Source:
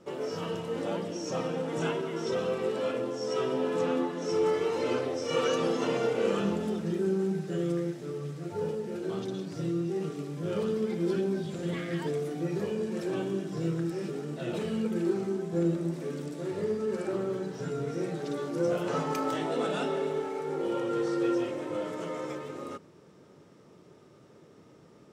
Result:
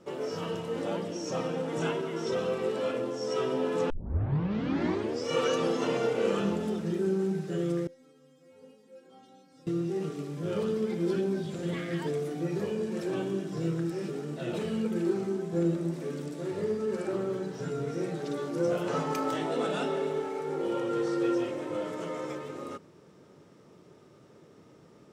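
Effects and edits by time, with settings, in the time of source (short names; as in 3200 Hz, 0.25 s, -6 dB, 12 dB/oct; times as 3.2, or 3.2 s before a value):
3.9 tape start 1.38 s
7.87–9.67 metallic resonator 260 Hz, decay 0.41 s, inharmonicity 0.002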